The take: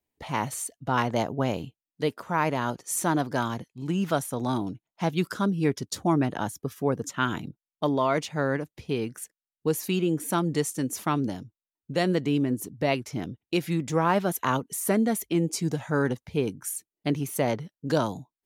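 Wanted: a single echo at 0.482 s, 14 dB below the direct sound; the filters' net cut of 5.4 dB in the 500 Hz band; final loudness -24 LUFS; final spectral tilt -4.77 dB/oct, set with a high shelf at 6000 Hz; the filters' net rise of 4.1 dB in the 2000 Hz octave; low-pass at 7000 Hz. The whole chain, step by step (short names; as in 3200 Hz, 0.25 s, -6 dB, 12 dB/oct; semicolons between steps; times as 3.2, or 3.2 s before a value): LPF 7000 Hz; bell 500 Hz -7.5 dB; bell 2000 Hz +5.5 dB; high shelf 6000 Hz +5 dB; echo 0.482 s -14 dB; gain +5 dB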